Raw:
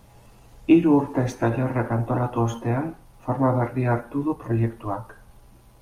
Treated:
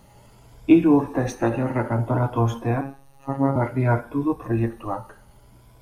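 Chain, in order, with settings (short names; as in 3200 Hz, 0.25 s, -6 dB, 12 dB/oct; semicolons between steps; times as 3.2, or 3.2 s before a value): moving spectral ripple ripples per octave 1.7, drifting +0.59 Hz, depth 8 dB; 2.81–3.56 robotiser 137 Hz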